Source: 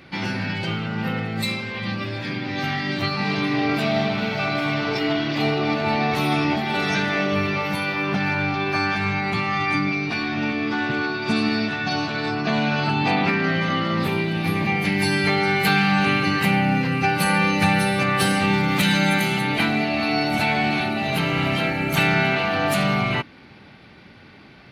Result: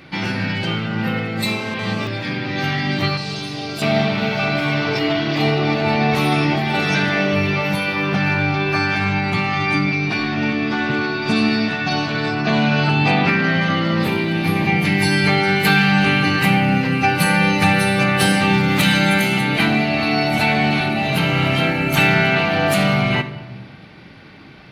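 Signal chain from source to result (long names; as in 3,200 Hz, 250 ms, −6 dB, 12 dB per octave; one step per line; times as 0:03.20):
0:03.17–0:03.82: octave-band graphic EQ 125/250/500/1,000/2,000/8,000 Hz −9/−9/−4/−8/−12/+10 dB
convolution reverb RT60 1.2 s, pre-delay 6 ms, DRR 9 dB
0:01.46–0:02.07: phone interference −34 dBFS
level +3.5 dB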